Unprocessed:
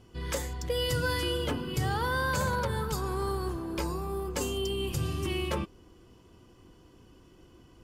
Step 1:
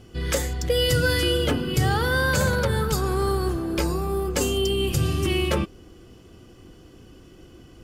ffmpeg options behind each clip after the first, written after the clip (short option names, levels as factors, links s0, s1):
-af "equalizer=f=980:t=o:w=0.21:g=-11.5,volume=2.66"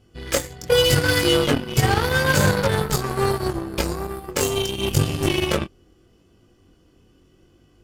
-af "flanger=delay=20:depth=2.7:speed=0.78,aeval=exprs='0.251*(cos(1*acos(clip(val(0)/0.251,-1,1)))-cos(1*PI/2))+0.0282*(cos(7*acos(clip(val(0)/0.251,-1,1)))-cos(7*PI/2))':c=same,volume=2.37"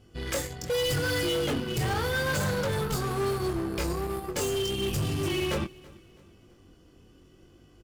-af "volume=16.8,asoftclip=hard,volume=0.0596,aecho=1:1:329|658|987:0.0708|0.0297|0.0125"